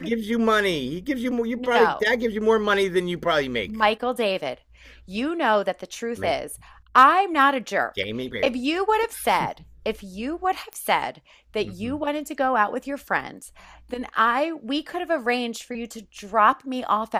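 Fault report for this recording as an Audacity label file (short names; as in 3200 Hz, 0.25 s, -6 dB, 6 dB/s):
10.730000	10.730000	pop -17 dBFS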